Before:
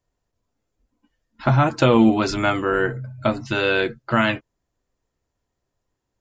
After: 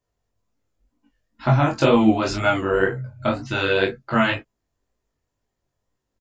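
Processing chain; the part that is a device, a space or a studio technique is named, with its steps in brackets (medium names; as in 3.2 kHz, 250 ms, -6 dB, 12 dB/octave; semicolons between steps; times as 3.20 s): double-tracked vocal (doubling 21 ms -4 dB; chorus 2 Hz, delay 16 ms, depth 6.8 ms); trim +1 dB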